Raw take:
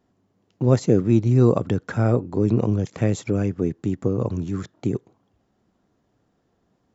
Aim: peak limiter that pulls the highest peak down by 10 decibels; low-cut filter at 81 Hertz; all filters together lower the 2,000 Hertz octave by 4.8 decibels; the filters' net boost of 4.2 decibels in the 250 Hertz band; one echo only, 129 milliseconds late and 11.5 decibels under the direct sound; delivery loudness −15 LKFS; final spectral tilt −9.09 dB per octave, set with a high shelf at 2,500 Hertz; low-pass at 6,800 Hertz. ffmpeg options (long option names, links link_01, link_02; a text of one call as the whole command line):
ffmpeg -i in.wav -af "highpass=81,lowpass=6800,equalizer=frequency=250:width_type=o:gain=5.5,equalizer=frequency=2000:width_type=o:gain=-3,highshelf=frequency=2500:gain=-8.5,alimiter=limit=-12dB:level=0:latency=1,aecho=1:1:129:0.266,volume=8.5dB" out.wav